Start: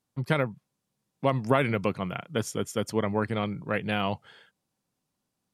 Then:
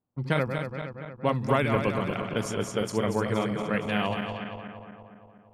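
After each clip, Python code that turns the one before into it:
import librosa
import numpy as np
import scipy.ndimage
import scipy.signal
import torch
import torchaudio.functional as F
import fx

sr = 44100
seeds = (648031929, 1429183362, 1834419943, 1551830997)

y = fx.reverse_delay_fb(x, sr, ms=117, feedback_pct=78, wet_db=-6.0)
y = fx.env_lowpass(y, sr, base_hz=960.0, full_db=-23.5)
y = y * librosa.db_to_amplitude(-1.0)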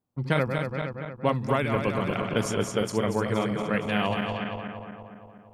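y = fx.rider(x, sr, range_db=3, speed_s=0.5)
y = y * librosa.db_to_amplitude(1.5)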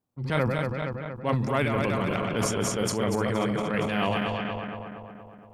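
y = fx.transient(x, sr, attack_db=-7, sustain_db=8)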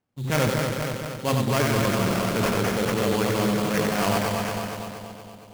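y = fx.sample_hold(x, sr, seeds[0], rate_hz=3800.0, jitter_pct=20)
y = y + 10.0 ** (-4.5 / 20.0) * np.pad(y, (int(92 * sr / 1000.0), 0))[:len(y)]
y = y * librosa.db_to_amplitude(2.0)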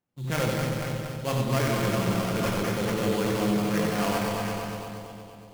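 y = fx.room_shoebox(x, sr, seeds[1], volume_m3=430.0, walls='mixed', distance_m=0.83)
y = y * librosa.db_to_amplitude(-5.5)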